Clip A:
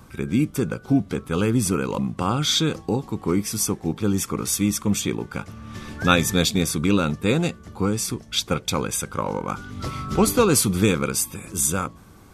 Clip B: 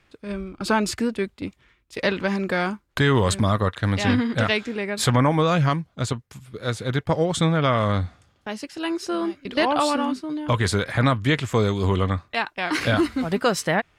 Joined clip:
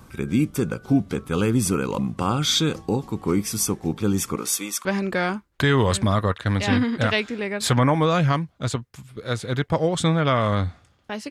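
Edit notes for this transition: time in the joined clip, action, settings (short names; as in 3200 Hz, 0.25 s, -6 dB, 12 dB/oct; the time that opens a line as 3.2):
clip A
4.35–4.85 HPF 210 Hz -> 950 Hz
4.85 switch to clip B from 2.22 s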